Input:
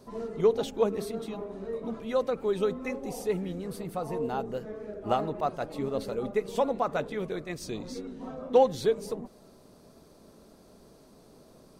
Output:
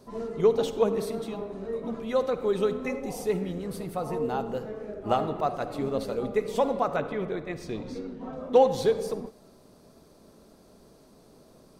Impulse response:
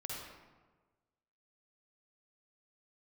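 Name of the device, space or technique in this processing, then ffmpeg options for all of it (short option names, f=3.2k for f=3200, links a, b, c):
keyed gated reverb: -filter_complex "[0:a]asplit=3[a][b][c];[1:a]atrim=start_sample=2205[d];[b][d]afir=irnorm=-1:irlink=0[e];[c]apad=whole_len=520107[f];[e][f]sidechaingate=range=-33dB:threshold=-42dB:ratio=16:detection=peak,volume=-7.5dB[g];[a][g]amix=inputs=2:normalize=0,asettb=1/sr,asplit=3[h][i][j];[h]atrim=end=6.964[k];[i]atrim=start=6.96:end=8.33,asetpts=PTS-STARTPTS,afade=t=in:d=0.004:c=qsin,afade=t=out:st=1.366:d=0.004:c=qsin,bass=f=250:g=0,treble=f=4k:g=-11[l];[j]atrim=start=8.326[m];[k][l]acrossfade=d=0.004:c1=hsin:c2=qsin[n];[n][m]acrossfade=d=0.004:c1=qsin:c2=hsin"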